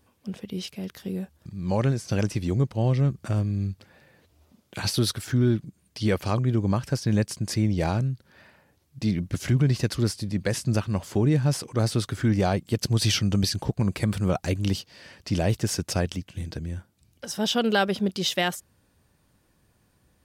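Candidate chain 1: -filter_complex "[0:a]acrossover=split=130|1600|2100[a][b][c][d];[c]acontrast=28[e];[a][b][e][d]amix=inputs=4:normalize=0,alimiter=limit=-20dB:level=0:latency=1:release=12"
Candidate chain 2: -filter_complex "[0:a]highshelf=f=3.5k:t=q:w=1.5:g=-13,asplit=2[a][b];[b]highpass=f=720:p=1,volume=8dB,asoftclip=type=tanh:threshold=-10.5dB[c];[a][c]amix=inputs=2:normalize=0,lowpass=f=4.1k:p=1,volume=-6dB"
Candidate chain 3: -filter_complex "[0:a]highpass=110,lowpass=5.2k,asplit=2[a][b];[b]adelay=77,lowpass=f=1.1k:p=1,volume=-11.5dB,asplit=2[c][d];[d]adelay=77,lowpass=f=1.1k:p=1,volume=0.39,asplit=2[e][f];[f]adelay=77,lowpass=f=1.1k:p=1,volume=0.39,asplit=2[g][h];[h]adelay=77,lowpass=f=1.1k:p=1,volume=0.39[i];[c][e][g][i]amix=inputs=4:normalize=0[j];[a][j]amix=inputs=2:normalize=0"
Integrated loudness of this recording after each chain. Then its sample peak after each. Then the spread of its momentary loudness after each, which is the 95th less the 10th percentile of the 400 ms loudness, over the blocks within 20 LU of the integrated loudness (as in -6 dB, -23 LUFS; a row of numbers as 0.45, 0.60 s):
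-30.0, -28.5, -27.0 LUFS; -20.0, -11.0, -9.5 dBFS; 8, 13, 13 LU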